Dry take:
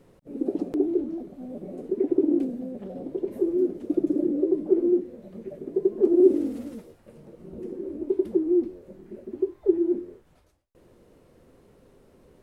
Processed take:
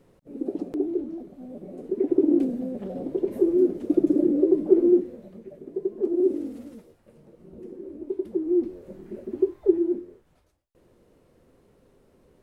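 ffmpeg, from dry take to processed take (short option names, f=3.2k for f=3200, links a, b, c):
-af "volume=12dB,afade=t=in:st=1.72:d=0.8:silence=0.501187,afade=t=out:st=5:d=0.42:silence=0.375837,afade=t=in:st=8.31:d=0.6:silence=0.375837,afade=t=out:st=9.47:d=0.59:silence=0.446684"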